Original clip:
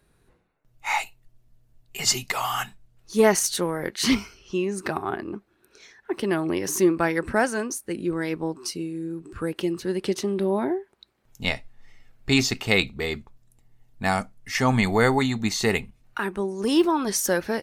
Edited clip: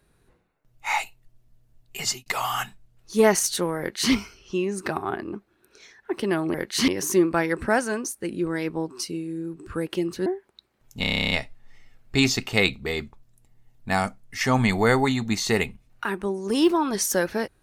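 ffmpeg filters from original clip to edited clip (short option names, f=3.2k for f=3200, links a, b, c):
-filter_complex "[0:a]asplit=15[a][b][c][d][e][f][g][h][i][j][k][l][m][n][o];[a]atrim=end=2.26,asetpts=PTS-STARTPTS,afade=t=out:st=1.97:d=0.29[p];[b]atrim=start=2.26:end=6.542,asetpts=PTS-STARTPTS,afade=t=in:d=0.004:c=hsin[q];[c]atrim=start=3.788:end=4.132[r];[d]atrim=start=6.538:end=9.922[s];[e]atrim=start=10.698:end=11.482[t];[f]atrim=start=11.448:end=11.482[u];[g]atrim=start=11.448:end=11.482[v];[h]atrim=start=11.448:end=11.482[w];[i]atrim=start=11.448:end=11.482[x];[j]atrim=start=11.448:end=11.482[y];[k]atrim=start=11.448:end=11.482[z];[l]atrim=start=11.448:end=11.482[aa];[m]atrim=start=11.448:end=11.482[ab];[n]atrim=start=11.448:end=11.482[ac];[o]atrim=start=11.448[ad];[p][q]concat=n=2:v=0:a=1[ae];[ae][r]acrossfade=d=0.004:c1=hsin:c2=hsin[af];[af][s]acrossfade=d=0.004:c1=hsin:c2=hsin[ag];[ag][t]acrossfade=d=0.004:c1=hsin:c2=hsin[ah];[ah][u]acrossfade=d=0.004:c1=hsin:c2=hsin[ai];[ai][v]acrossfade=d=0.004:c1=hsin:c2=hsin[aj];[aj][w]acrossfade=d=0.004:c1=hsin:c2=hsin[ak];[ak][x]acrossfade=d=0.004:c1=hsin:c2=hsin[al];[al][y]acrossfade=d=0.004:c1=hsin:c2=hsin[am];[am][z]acrossfade=d=0.004:c1=hsin:c2=hsin[an];[an][aa]acrossfade=d=0.004:c1=hsin:c2=hsin[ao];[ao][ab]acrossfade=d=0.004:c1=hsin:c2=hsin[ap];[ap][ac]acrossfade=d=0.004:c1=hsin:c2=hsin[aq];[aq][ad]acrossfade=d=0.004:c1=hsin:c2=hsin"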